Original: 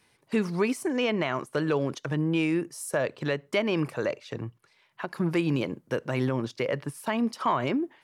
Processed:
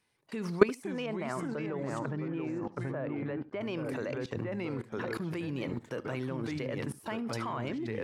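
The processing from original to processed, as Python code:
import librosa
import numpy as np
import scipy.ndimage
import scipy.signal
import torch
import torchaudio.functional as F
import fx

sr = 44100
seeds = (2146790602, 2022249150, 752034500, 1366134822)

y = fx.lowpass(x, sr, hz=1600.0, slope=12, at=(1.06, 3.61))
y = fx.echo_pitch(y, sr, ms=472, semitones=-2, count=3, db_per_echo=-6.0)
y = fx.transient(y, sr, attack_db=1, sustain_db=-3)
y = fx.level_steps(y, sr, step_db=21)
y = y + 10.0 ** (-20.0 / 20.0) * np.pad(y, (int(73 * sr / 1000.0), 0))[:len(y)]
y = y * 10.0 ** (7.0 / 20.0)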